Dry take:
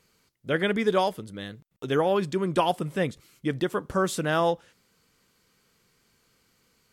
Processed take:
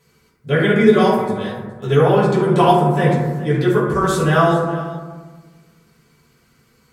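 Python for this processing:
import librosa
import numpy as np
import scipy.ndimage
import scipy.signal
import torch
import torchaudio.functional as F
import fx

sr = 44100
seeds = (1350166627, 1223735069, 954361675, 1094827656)

y = x + 10.0 ** (-17.0 / 20.0) * np.pad(x, (int(419 * sr / 1000.0), 0))[:len(x)]
y = fx.rev_fdn(y, sr, rt60_s=1.3, lf_ratio=1.5, hf_ratio=0.35, size_ms=41.0, drr_db=-9.0)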